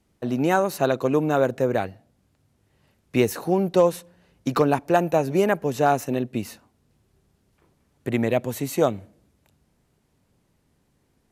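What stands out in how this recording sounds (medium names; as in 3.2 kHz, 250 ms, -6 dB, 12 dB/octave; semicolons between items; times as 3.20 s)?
noise floor -68 dBFS; spectral tilt -4.0 dB/octave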